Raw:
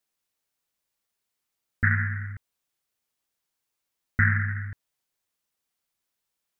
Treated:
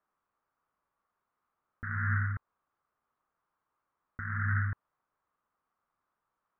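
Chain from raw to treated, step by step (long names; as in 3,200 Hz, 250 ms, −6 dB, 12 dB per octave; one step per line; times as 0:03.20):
compressor whose output falls as the input rises −30 dBFS, ratio −1
low-pass with resonance 1,200 Hz, resonance Q 3.7
level −2 dB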